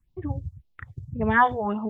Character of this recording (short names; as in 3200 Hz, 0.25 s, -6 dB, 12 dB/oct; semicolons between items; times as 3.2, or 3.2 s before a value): phasing stages 4, 1.8 Hz, lowest notch 190–1700 Hz